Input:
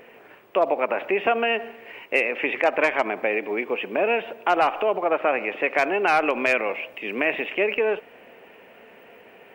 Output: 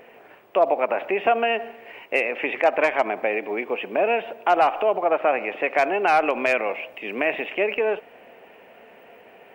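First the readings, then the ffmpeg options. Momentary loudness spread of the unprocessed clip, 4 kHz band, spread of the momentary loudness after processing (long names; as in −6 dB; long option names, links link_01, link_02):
7 LU, −1.5 dB, 8 LU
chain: -af "equalizer=frequency=710:width_type=o:width=0.67:gain=5,volume=-1.5dB"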